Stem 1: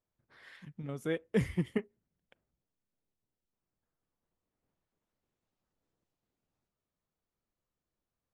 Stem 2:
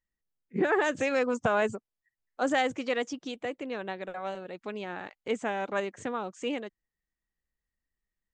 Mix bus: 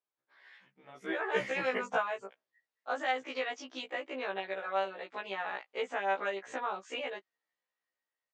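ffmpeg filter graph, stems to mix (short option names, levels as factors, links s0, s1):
-filter_complex "[0:a]bandreject=f=50:t=h:w=6,bandreject=f=100:t=h:w=6,bandreject=f=150:t=h:w=6,bandreject=f=200:t=h:w=6,volume=0.944,afade=t=out:st=1.9:d=0.59:silence=0.237137,asplit=2[s0][s1];[1:a]acompressor=threshold=0.0251:ratio=6,adelay=500,volume=0.891[s2];[s1]apad=whole_len=389743[s3];[s2][s3]sidechaingate=range=0.447:threshold=0.00141:ratio=16:detection=peak[s4];[s0][s4]amix=inputs=2:normalize=0,dynaudnorm=f=660:g=5:m=5.62,highpass=570,lowpass=4200,afftfilt=real='re*1.73*eq(mod(b,3),0)':imag='im*1.73*eq(mod(b,3),0)':win_size=2048:overlap=0.75"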